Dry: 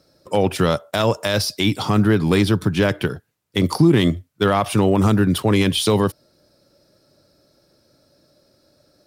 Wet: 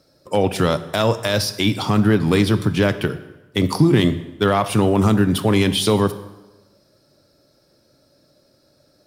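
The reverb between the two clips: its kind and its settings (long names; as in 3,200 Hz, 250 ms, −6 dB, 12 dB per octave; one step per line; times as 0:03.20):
dense smooth reverb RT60 1.1 s, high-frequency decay 0.8×, DRR 11.5 dB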